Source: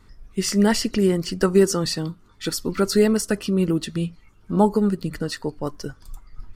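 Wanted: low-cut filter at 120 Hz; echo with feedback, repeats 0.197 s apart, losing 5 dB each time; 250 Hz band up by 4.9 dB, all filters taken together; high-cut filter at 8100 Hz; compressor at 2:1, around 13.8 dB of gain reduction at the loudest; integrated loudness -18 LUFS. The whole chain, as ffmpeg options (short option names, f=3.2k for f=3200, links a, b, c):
-af "highpass=120,lowpass=8.1k,equalizer=f=250:t=o:g=7.5,acompressor=threshold=-35dB:ratio=2,aecho=1:1:197|394|591|788|985|1182|1379:0.562|0.315|0.176|0.0988|0.0553|0.031|0.0173,volume=11.5dB"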